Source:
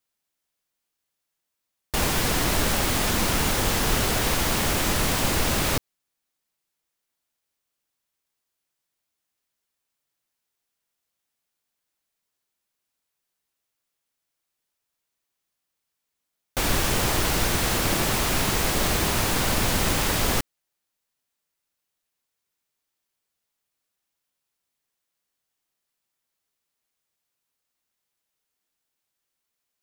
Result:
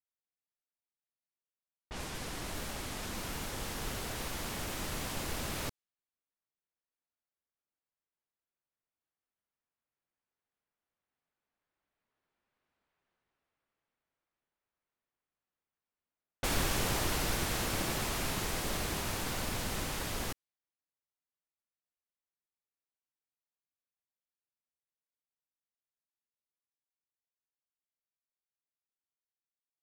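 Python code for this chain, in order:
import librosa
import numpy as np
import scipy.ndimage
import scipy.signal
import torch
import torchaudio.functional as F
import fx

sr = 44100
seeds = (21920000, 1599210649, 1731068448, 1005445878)

y = fx.doppler_pass(x, sr, speed_mps=5, closest_m=3.6, pass_at_s=12.84)
y = fx.env_lowpass(y, sr, base_hz=1900.0, full_db=-41.5)
y = y * librosa.db_to_amplitude(6.5)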